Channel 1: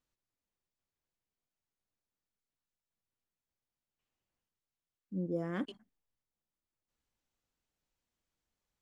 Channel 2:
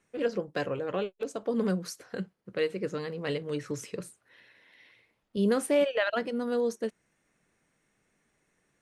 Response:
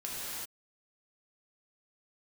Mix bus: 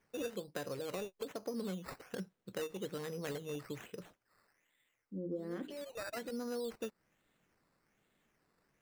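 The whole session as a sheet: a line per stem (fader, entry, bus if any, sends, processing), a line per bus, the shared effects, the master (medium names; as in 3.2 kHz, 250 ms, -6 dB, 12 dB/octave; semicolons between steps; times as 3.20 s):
+0.5 dB, 0.00 s, no send, hum notches 60/120/180/240/300/360 Hz; flange 0.25 Hz, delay 9.6 ms, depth 2.6 ms, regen +75%; small resonant body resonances 340/510 Hz, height 9 dB
-3.5 dB, 0.00 s, no send, decimation with a swept rate 11×, swing 60% 1.2 Hz; auto duck -19 dB, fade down 1.75 s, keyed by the first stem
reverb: none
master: compression 4:1, threshold -38 dBFS, peak gain reduction 11 dB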